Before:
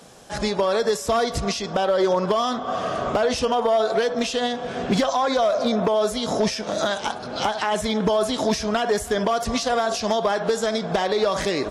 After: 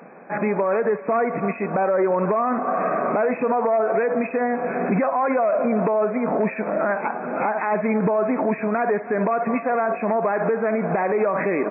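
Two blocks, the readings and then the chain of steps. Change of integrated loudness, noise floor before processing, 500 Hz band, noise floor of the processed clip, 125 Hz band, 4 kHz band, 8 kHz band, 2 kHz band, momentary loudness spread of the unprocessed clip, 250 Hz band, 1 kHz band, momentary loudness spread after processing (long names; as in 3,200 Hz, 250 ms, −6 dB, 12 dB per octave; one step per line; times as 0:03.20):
+0.5 dB, −33 dBFS, +1.0 dB, −35 dBFS, +1.0 dB, below −40 dB, below −40 dB, +1.5 dB, 5 LU, +2.0 dB, +1.0 dB, 4 LU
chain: linear-phase brick-wall band-pass 150–2,600 Hz
brickwall limiter −18.5 dBFS, peak gain reduction 6.5 dB
level +5 dB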